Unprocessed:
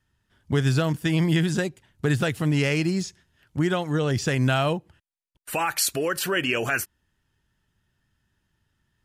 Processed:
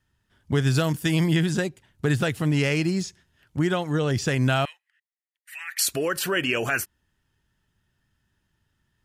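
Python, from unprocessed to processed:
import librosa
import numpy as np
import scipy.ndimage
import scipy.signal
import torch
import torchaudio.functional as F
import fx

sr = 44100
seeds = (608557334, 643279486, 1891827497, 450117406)

y = fx.high_shelf(x, sr, hz=5200.0, db=8.5, at=(0.74, 1.28))
y = fx.ladder_highpass(y, sr, hz=1800.0, resonance_pct=80, at=(4.65, 5.79))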